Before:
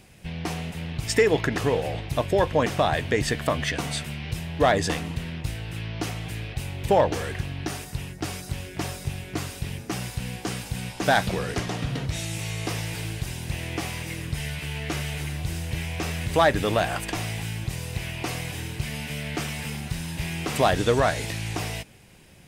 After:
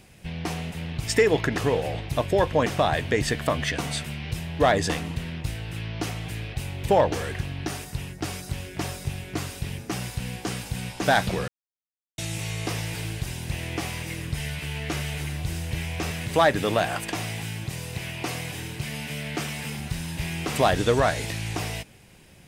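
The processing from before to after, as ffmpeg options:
-filter_complex "[0:a]asettb=1/sr,asplit=3[a][b][c];[a]atrim=end=16.114[d];[b]atrim=start=16.11:end=19.79,asetpts=PTS-STARTPTS,afade=t=in:d=0.004:c=qsin,afade=t=out:st=3.676:d=0.004:c=qsin,highpass=100[e];[c]atrim=start=19.786[f];[d][e]acrossfade=d=0.004:c1=hsin:c2=qsin[g];[g][f]acrossfade=d=0.004:c1=qsin:c2=hsin,asplit=3[h][i][j];[h]atrim=end=11.48,asetpts=PTS-STARTPTS,afade=t=out:st=11.476:d=0.004:c=hsin[k];[i]atrim=start=11.48:end=12.18,asetpts=PTS-STARTPTS,volume=0[l];[j]atrim=start=12.18,asetpts=PTS-STARTPTS,afade=t=in:d=0.004:c=hsin[m];[k][l][m]concat=n=3:v=0:a=1"

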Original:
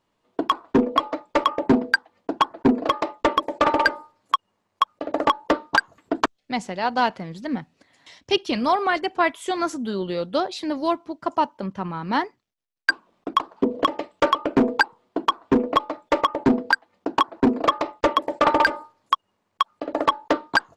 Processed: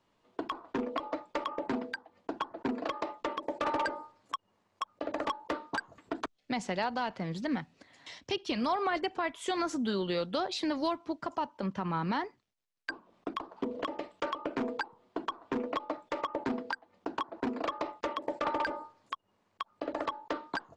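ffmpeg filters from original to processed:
-filter_complex "[0:a]asplit=3[a][b][c];[a]afade=t=out:st=3.46:d=0.02[d];[b]asoftclip=type=hard:threshold=-14.5dB,afade=t=in:st=3.46:d=0.02,afade=t=out:st=6.83:d=0.02[e];[c]afade=t=in:st=6.83:d=0.02[f];[d][e][f]amix=inputs=3:normalize=0,acrossover=split=100|980[g][h][i];[g]acompressor=threshold=-56dB:ratio=4[j];[h]acompressor=threshold=-30dB:ratio=4[k];[i]acompressor=threshold=-32dB:ratio=4[l];[j][k][l]amix=inputs=3:normalize=0,alimiter=limit=-21.5dB:level=0:latency=1:release=64,lowpass=8.1k"

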